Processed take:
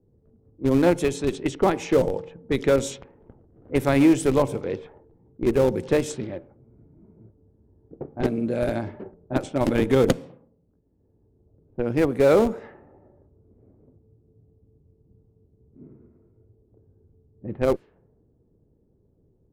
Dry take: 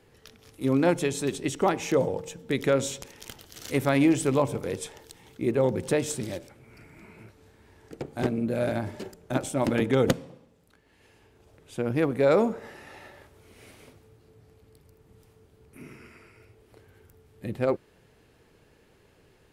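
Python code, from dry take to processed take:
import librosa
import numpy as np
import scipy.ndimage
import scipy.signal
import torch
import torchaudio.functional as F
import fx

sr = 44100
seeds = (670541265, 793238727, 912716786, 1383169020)

p1 = fx.env_lowpass(x, sr, base_hz=300.0, full_db=-22.5)
p2 = fx.dynamic_eq(p1, sr, hz=380.0, q=1.0, threshold_db=-35.0, ratio=4.0, max_db=4)
p3 = fx.schmitt(p2, sr, flips_db=-17.5)
p4 = p2 + (p3 * 10.0 ** (-4.0 / 20.0))
y = fx.env_lowpass(p4, sr, base_hz=1200.0, full_db=-19.5)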